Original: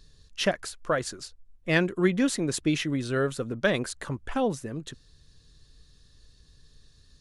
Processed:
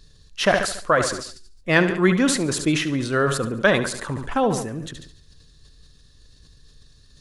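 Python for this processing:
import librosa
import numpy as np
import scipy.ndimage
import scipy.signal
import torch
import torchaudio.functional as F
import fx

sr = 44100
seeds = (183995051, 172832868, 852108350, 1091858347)

p1 = fx.dynamic_eq(x, sr, hz=1100.0, q=1.1, threshold_db=-42.0, ratio=4.0, max_db=7)
p2 = p1 + fx.echo_feedback(p1, sr, ms=71, feedback_pct=48, wet_db=-13, dry=0)
p3 = fx.sustainer(p2, sr, db_per_s=64.0)
y = F.gain(torch.from_numpy(p3), 3.5).numpy()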